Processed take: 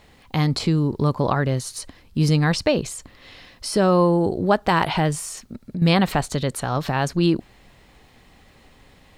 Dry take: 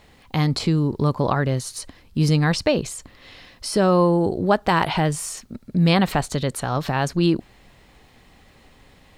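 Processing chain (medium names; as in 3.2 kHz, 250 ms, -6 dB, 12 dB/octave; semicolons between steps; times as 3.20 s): 5.18–5.82 s: compression 3:1, threshold -29 dBFS, peak gain reduction 10 dB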